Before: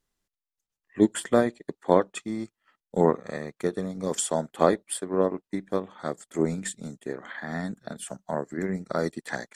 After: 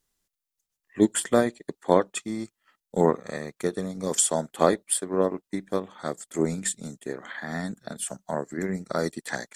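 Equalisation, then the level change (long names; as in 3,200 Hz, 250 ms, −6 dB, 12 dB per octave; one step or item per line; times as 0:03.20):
high-shelf EQ 4,300 Hz +8.5 dB
0.0 dB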